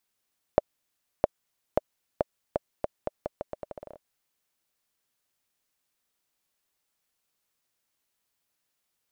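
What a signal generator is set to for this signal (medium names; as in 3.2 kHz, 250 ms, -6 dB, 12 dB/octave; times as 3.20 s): bouncing ball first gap 0.66 s, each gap 0.81, 600 Hz, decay 23 ms -5 dBFS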